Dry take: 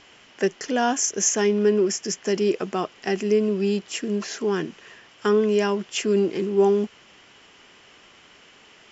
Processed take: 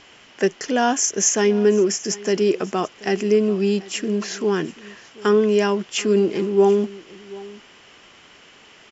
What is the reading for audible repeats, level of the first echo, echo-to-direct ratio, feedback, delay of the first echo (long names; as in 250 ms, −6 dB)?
1, −20.5 dB, −20.5 dB, repeats not evenly spaced, 735 ms